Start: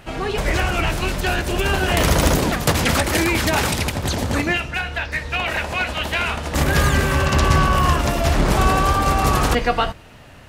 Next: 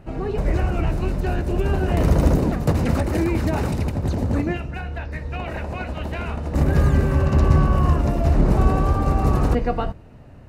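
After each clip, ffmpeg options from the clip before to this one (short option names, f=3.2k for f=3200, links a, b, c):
-af "tiltshelf=f=940:g=9.5,bandreject=f=3.3k:w=9,volume=-7.5dB"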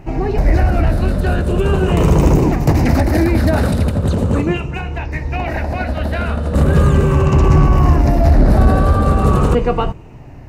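-af "afftfilt=real='re*pow(10,7/40*sin(2*PI*(0.72*log(max(b,1)*sr/1024/100)/log(2)-(-0.39)*(pts-256)/sr)))':imag='im*pow(10,7/40*sin(2*PI*(0.72*log(max(b,1)*sr/1024/100)/log(2)-(-0.39)*(pts-256)/sr)))':win_size=1024:overlap=0.75,acontrast=88"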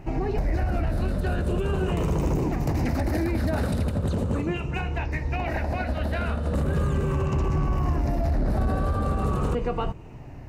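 -af "alimiter=limit=-12.5dB:level=0:latency=1:release=217,volume=-5dB"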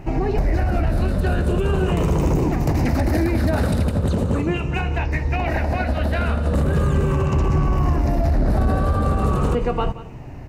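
-af "aecho=1:1:178:0.158,volume=5.5dB"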